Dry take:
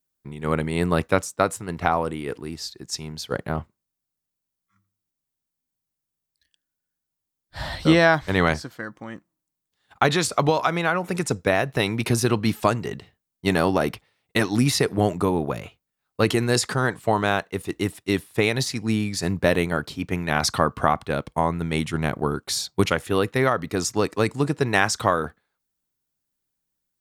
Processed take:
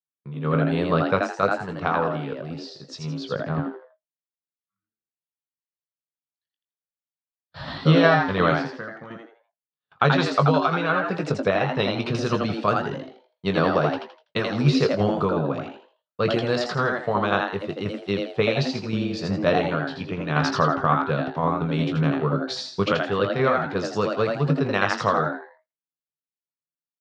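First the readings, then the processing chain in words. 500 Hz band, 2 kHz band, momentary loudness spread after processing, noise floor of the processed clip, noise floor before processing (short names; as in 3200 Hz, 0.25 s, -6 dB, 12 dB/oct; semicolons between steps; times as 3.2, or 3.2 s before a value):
+0.5 dB, -1.0 dB, 12 LU, under -85 dBFS, -84 dBFS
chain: gate with hold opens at -43 dBFS; tremolo saw down 5.6 Hz, depth 50%; speaker cabinet 110–4500 Hz, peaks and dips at 150 Hz +8 dB, 300 Hz -9 dB, 480 Hz +4 dB, 800 Hz -5 dB, 1200 Hz +5 dB, 2000 Hz -7 dB; doubler 20 ms -8.5 dB; on a send: frequency-shifting echo 82 ms, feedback 31%, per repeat +120 Hz, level -4 dB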